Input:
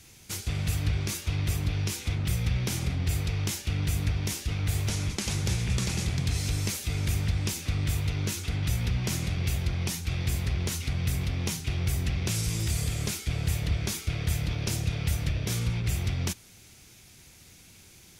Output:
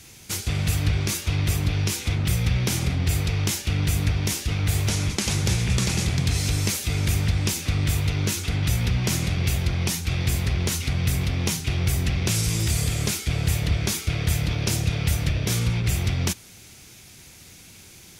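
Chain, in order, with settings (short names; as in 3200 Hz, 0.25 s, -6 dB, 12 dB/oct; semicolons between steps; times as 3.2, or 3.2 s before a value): low shelf 61 Hz -5 dB; gain +6.5 dB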